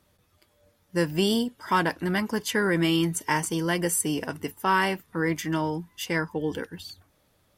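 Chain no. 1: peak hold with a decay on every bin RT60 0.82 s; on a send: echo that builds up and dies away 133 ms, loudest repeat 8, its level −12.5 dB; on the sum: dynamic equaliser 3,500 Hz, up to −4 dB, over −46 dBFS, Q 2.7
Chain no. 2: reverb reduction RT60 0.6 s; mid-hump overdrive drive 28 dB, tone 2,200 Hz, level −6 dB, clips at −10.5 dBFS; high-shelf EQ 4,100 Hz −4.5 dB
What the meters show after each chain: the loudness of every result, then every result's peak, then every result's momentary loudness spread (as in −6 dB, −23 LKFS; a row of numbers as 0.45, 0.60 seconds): −22.5, −21.0 LKFS; −7.5, −11.5 dBFS; 6, 7 LU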